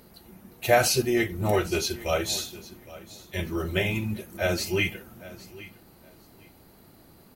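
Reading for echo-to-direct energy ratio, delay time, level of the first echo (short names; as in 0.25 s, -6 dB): -18.5 dB, 0.811 s, -18.5 dB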